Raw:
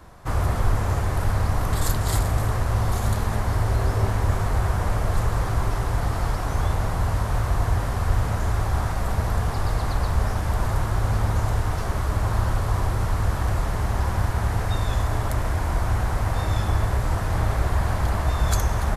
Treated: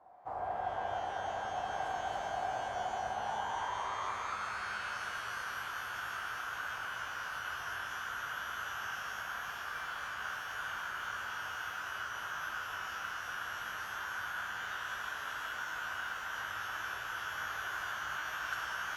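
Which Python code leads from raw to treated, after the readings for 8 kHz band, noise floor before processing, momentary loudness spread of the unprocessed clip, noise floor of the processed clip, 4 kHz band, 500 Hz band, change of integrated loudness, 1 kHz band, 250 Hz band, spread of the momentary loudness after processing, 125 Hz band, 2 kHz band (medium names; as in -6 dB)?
-13.5 dB, -27 dBFS, 2 LU, -42 dBFS, -6.0 dB, -14.0 dB, -14.0 dB, -7.5 dB, -26.0 dB, 3 LU, -36.5 dB, -1.5 dB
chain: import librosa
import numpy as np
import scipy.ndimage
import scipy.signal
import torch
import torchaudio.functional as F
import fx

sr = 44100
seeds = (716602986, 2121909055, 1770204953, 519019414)

y = fx.filter_sweep_bandpass(x, sr, from_hz=750.0, to_hz=1500.0, start_s=3.09, end_s=4.57, q=7.0)
y = fx.rev_shimmer(y, sr, seeds[0], rt60_s=3.2, semitones=12, shimmer_db=-8, drr_db=1.0)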